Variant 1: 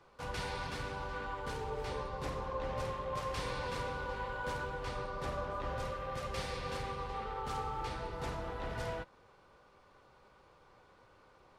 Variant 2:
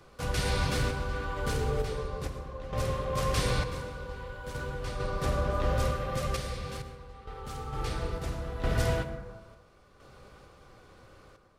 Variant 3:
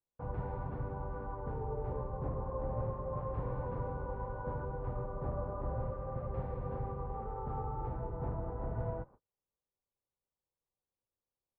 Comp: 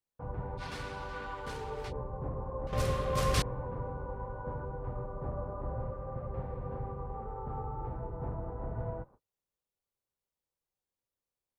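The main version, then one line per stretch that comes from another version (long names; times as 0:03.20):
3
0:00.60–0:01.90: punch in from 1, crossfade 0.06 s
0:02.67–0:03.42: punch in from 2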